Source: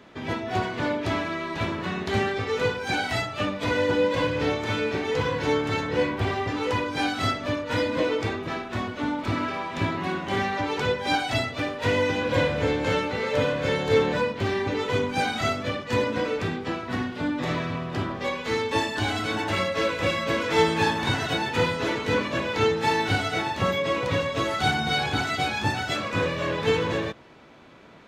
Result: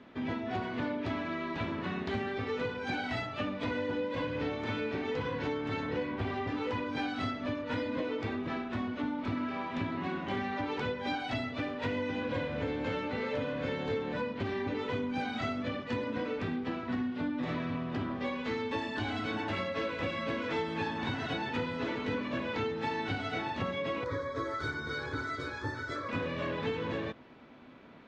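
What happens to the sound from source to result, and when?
24.04–26.09 s: static phaser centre 750 Hz, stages 6
whole clip: low-pass 3.9 kHz 12 dB/octave; peaking EQ 250 Hz +9.5 dB 0.27 oct; compression, threshold -25 dBFS; trim -5.5 dB

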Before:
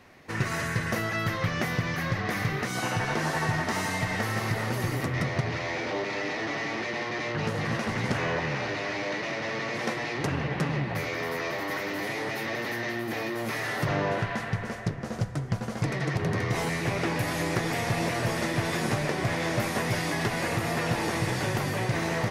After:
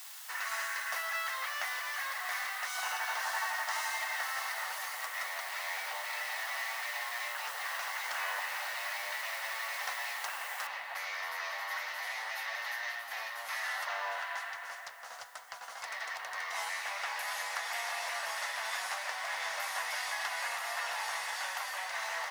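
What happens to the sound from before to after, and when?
10.67 s: noise floor step -44 dB -59 dB
whole clip: inverse Chebyshev high-pass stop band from 390 Hz, stop band 40 dB; band-stop 2.4 kHz, Q 15; trim -3.5 dB

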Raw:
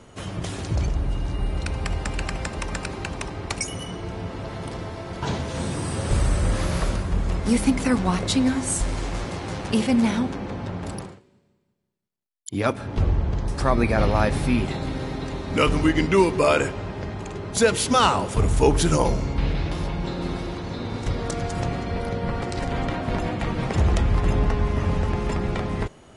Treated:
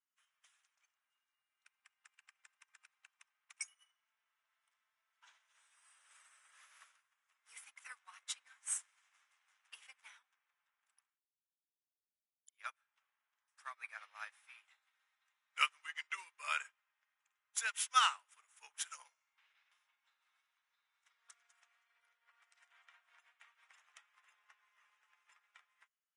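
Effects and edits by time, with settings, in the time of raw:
1.23–3.57 s: compression 2:1, threshold -28 dBFS
whole clip: high-pass 1.3 kHz 24 dB/octave; peaking EQ 4.4 kHz -11.5 dB 0.37 oct; upward expansion 2.5:1, over -45 dBFS; trim -3.5 dB

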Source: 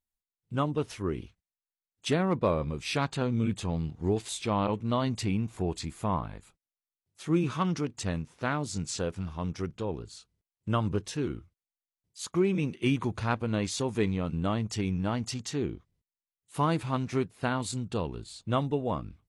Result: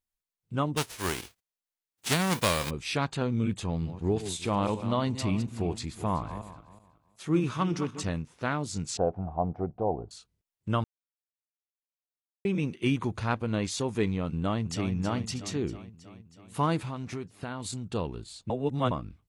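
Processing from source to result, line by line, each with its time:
0.76–2.69 s: formants flattened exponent 0.3
3.63–8.10 s: backward echo that repeats 186 ms, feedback 42%, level -11 dB
8.97–10.11 s: resonant low-pass 730 Hz, resonance Q 9
10.84–12.45 s: mute
14.33–14.93 s: echo throw 320 ms, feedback 65%, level -9 dB
16.79–17.86 s: compression, threshold -31 dBFS
18.50–18.91 s: reverse

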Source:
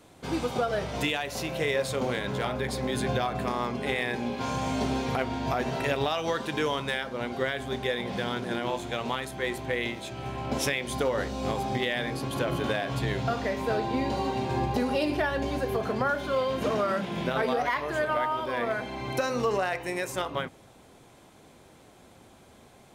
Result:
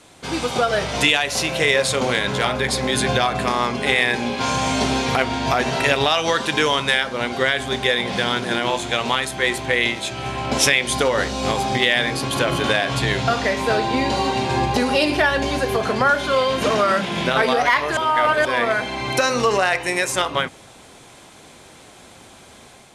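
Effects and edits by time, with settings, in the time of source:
17.97–18.45 s: reverse
whole clip: low-pass 11 kHz 24 dB/octave; tilt shelf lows -4.5 dB, about 1.1 kHz; level rider gain up to 3.5 dB; trim +7 dB

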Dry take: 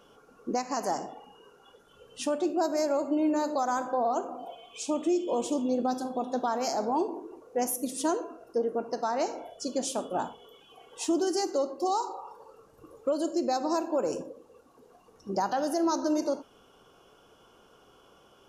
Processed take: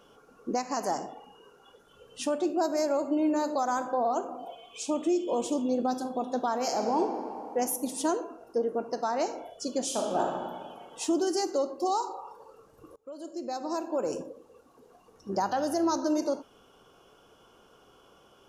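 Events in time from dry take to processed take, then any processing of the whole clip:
6.56–6.98 s: reverb throw, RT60 2.9 s, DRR 4 dB
9.85–10.25 s: reverb throw, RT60 1.8 s, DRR -0.5 dB
12.96–14.24 s: fade in, from -23.5 dB
15.31–15.97 s: mains buzz 100 Hz, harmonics 18, -54 dBFS

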